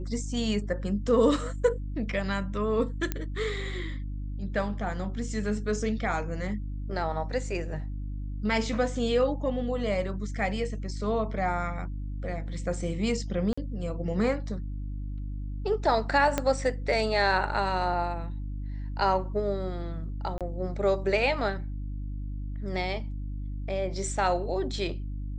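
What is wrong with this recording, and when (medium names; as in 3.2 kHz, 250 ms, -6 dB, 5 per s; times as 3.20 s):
hum 50 Hz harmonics 6 -34 dBFS
3.12 s: pop -14 dBFS
13.53–13.57 s: dropout 45 ms
16.38 s: pop -11 dBFS
20.38–20.41 s: dropout 27 ms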